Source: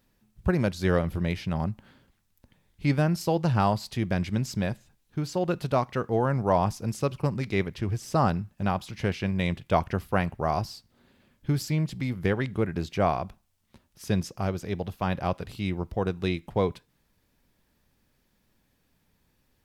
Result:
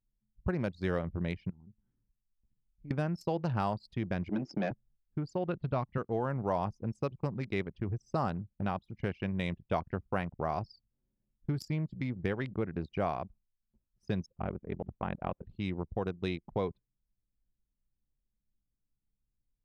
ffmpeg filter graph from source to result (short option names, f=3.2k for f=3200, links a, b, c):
-filter_complex "[0:a]asettb=1/sr,asplit=3[a][b][c];[a]atrim=end=1.504[d];[b]atrim=start=1.5:end=2.91,asetpts=PTS-STARTPTS,afade=t=in:d=0.004:c=qsin,afade=t=out:st=1.406:d=0.004:c=qsin,equalizer=f=620:t=o:w=0.34:g=-14.5,acompressor=threshold=-52dB:ratio=2:attack=3.2:release=140:knee=1:detection=peak[e];[c]atrim=start=2.906[f];[d][e]acrossfade=d=0.004:c1=hsin:c2=qsin[g];[g][f]acrossfade=d=0.004:c1=qsin:c2=hsin,asettb=1/sr,asplit=3[h][i][j];[h]atrim=end=4.294[k];[i]atrim=start=4.29:end=4.71,asetpts=PTS-STARTPTS,afade=t=in:d=0.004:c=qsin,afade=t=out:st=0.416:d=0.004:c=qsin,aeval=exprs='if(lt(val(0),0),0.251*val(0),val(0))':c=same,acontrast=61,highpass=f=160:w=0.5412,highpass=f=160:w=1.3066,equalizer=f=330:t=q:w=4:g=10,equalizer=f=740:t=q:w=4:g=6,equalizer=f=1.2k:t=q:w=4:g=-3,equalizer=f=3.9k:t=q:w=4:g=-7,lowpass=f=6k:w=0.5412,lowpass=f=6k:w=1.3066[l];[j]atrim=start=4.706[m];[k][l]acrossfade=d=0.004:c1=hsin:c2=qsin[n];[n][m]acrossfade=d=0.004:c1=qsin:c2=hsin,asettb=1/sr,asplit=3[o][p][q];[o]atrim=end=5.354[r];[p]atrim=start=5.35:end=5.98,asetpts=PTS-STARTPTS,afade=t=in:d=0.004:c=qsin,afade=t=out:st=0.626:d=0.004:c=qsin,asubboost=boost=10.5:cutoff=210,lowpass=f=4.5k:w=0.5412,lowpass=f=4.5k:w=1.3066[s];[q]atrim=start=5.976[t];[r][s]acrossfade=d=0.004:c1=hsin:c2=qsin[u];[u][t]acrossfade=d=0.004:c1=qsin:c2=hsin,asettb=1/sr,asplit=3[v][w][x];[v]atrim=end=14.264[y];[w]atrim=start=14.26:end=15.44,asetpts=PTS-STARTPTS,afade=t=in:d=0.004:c=qsin,afade=t=out:st=1.176:d=0.004:c=qsin,lowpass=f=2.9k:w=0.5412,lowpass=f=2.9k:w=1.3066,aeval=exprs='val(0)*sin(2*PI*21*n/s)':c=same[z];[x]atrim=start=15.436[aa];[y][z]acrossfade=d=0.004:c1=hsin:c2=qsin[ab];[ab][aa]acrossfade=d=0.004:c1=qsin:c2=hsin,anlmdn=10,lowshelf=f=89:g=-5.5,acompressor=threshold=-34dB:ratio=2"